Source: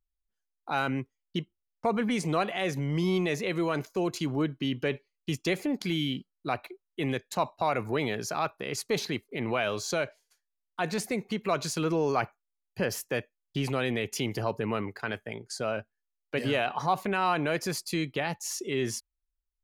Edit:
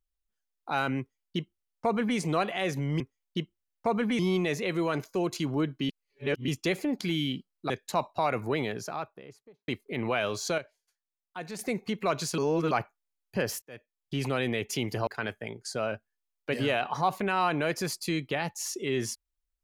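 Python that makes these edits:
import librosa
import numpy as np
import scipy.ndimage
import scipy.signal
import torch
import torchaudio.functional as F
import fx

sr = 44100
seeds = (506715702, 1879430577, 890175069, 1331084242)

y = fx.studio_fade_out(x, sr, start_s=7.87, length_s=1.24)
y = fx.edit(y, sr, fx.duplicate(start_s=0.99, length_s=1.19, to_s=3.0),
    fx.reverse_span(start_s=4.7, length_s=0.59),
    fx.cut(start_s=6.51, length_s=0.62),
    fx.clip_gain(start_s=10.01, length_s=1.01, db=-8.5),
    fx.reverse_span(start_s=11.81, length_s=0.33),
    fx.fade_in_span(start_s=13.05, length_s=0.63),
    fx.cut(start_s=14.5, length_s=0.42), tone=tone)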